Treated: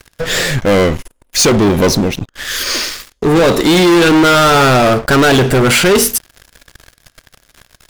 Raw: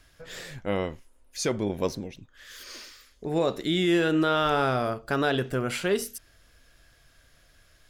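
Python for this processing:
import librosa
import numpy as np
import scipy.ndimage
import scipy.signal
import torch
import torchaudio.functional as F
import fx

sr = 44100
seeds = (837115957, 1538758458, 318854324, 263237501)

y = fx.leveller(x, sr, passes=5)
y = y * 10.0 ** (8.0 / 20.0)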